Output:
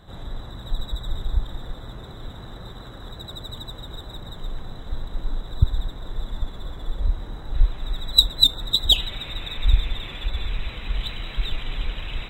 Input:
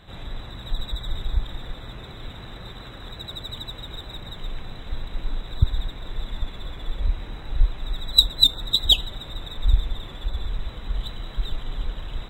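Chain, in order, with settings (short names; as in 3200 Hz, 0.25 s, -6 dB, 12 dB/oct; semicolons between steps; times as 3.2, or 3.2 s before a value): bell 2500 Hz -13 dB 0.71 oct, from 7.54 s -3.5 dB, from 8.96 s +13 dB; gain +1 dB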